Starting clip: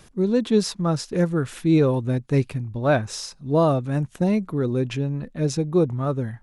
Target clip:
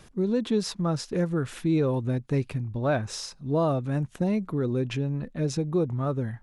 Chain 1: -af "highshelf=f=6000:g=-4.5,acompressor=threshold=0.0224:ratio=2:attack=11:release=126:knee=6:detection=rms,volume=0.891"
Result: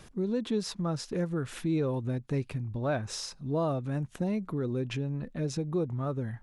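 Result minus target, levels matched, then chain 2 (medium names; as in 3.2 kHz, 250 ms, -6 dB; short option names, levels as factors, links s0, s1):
compression: peak gain reduction +5 dB
-af "highshelf=f=6000:g=-4.5,acompressor=threshold=0.0708:ratio=2:attack=11:release=126:knee=6:detection=rms,volume=0.891"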